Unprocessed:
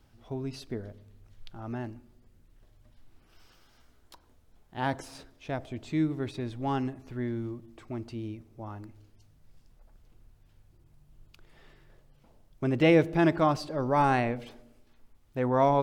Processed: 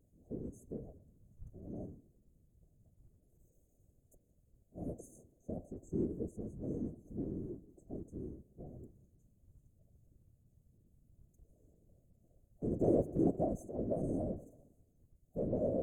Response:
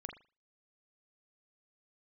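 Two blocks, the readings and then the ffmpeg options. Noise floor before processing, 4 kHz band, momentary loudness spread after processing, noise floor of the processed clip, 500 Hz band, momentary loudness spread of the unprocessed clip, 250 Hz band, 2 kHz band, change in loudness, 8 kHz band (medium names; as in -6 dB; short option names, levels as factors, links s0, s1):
-62 dBFS, under -40 dB, 20 LU, -73 dBFS, -8.5 dB, 19 LU, -8.5 dB, under -40 dB, -10.0 dB, -10.0 dB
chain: -af "afftfilt=real='re*(1-between(b*sr/4096,650,6200))':imag='im*(1-between(b*sr/4096,650,6200))':win_size=4096:overlap=0.75,afftfilt=real='hypot(re,im)*cos(2*PI*random(0))':imag='hypot(re,im)*sin(2*PI*random(1))':win_size=512:overlap=0.75,volume=0.794"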